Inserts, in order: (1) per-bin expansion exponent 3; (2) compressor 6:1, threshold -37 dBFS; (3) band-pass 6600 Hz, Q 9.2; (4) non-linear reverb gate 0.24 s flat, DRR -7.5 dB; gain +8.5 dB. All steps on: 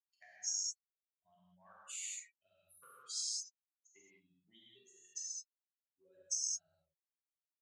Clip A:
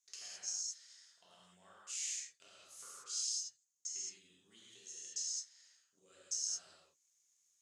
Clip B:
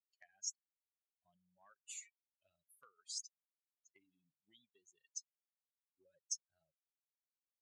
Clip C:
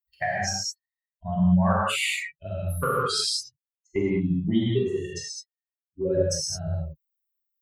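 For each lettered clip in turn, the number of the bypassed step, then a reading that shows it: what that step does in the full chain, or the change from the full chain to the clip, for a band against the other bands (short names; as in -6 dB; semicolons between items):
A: 1, crest factor change -1.5 dB; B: 4, momentary loudness spread change -1 LU; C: 3, 8 kHz band -30.5 dB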